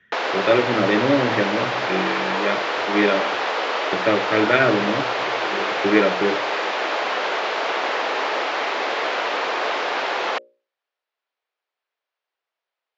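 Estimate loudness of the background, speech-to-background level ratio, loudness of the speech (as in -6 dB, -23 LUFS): -23.0 LUFS, 1.0 dB, -22.0 LUFS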